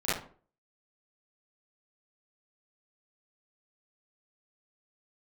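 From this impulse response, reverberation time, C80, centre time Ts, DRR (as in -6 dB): 0.45 s, 9.5 dB, 58 ms, -13.5 dB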